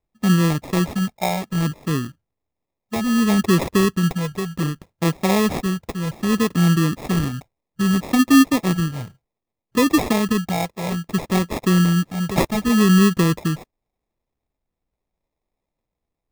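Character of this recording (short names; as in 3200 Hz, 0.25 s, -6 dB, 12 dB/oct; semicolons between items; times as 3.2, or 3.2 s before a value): phasing stages 4, 0.63 Hz, lowest notch 270–2600 Hz; aliases and images of a low sample rate 1500 Hz, jitter 0%; AAC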